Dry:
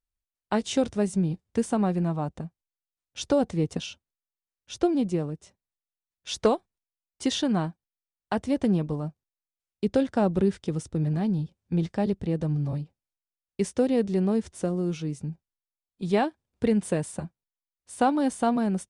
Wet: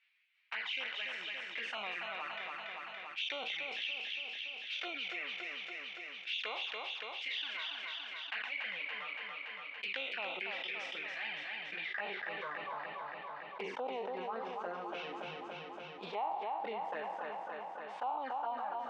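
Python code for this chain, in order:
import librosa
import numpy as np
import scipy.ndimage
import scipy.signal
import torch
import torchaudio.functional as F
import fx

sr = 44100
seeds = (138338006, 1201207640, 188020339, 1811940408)

y = fx.spec_trails(x, sr, decay_s=1.11)
y = scipy.signal.sosfilt(scipy.signal.butter(2, 100.0, 'highpass', fs=sr, output='sos'), y)
y = fx.dereverb_blind(y, sr, rt60_s=1.1)
y = scipy.signal.sosfilt(scipy.signal.butter(4, 3100.0, 'lowpass', fs=sr, output='sos'), y)
y = np.diff(y, prepend=0.0)
y = fx.rider(y, sr, range_db=5, speed_s=2.0)
y = fx.env_flanger(y, sr, rest_ms=11.0, full_db=-40.5)
y = fx.filter_sweep_bandpass(y, sr, from_hz=2300.0, to_hz=900.0, start_s=11.52, end_s=12.87, q=3.9)
y = fx.echo_feedback(y, sr, ms=284, feedback_pct=49, wet_db=-7.0)
y = fx.env_flatten(y, sr, amount_pct=70)
y = F.gain(torch.from_numpy(y), 9.5).numpy()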